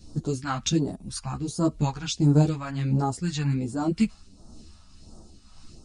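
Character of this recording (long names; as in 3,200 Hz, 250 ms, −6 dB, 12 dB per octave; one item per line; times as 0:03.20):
phaser sweep stages 2, 1.4 Hz, lowest notch 350–2,300 Hz
tremolo triangle 1.8 Hz, depth 55%
a shimmering, thickened sound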